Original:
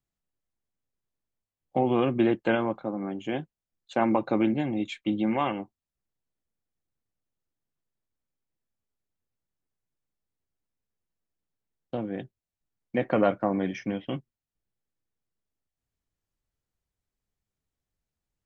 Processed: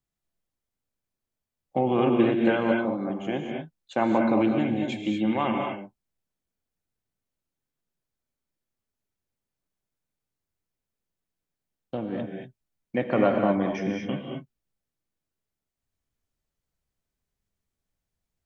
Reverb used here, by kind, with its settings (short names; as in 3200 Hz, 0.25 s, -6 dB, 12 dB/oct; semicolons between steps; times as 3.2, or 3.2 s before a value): non-linear reverb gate 0.26 s rising, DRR 1.5 dB